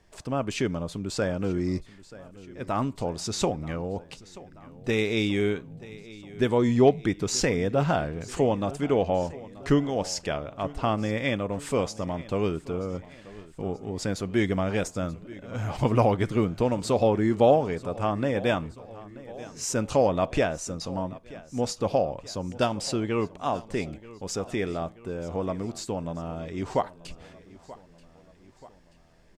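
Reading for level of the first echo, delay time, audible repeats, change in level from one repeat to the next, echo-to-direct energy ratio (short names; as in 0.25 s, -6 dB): -19.0 dB, 0.932 s, 3, -5.0 dB, -17.5 dB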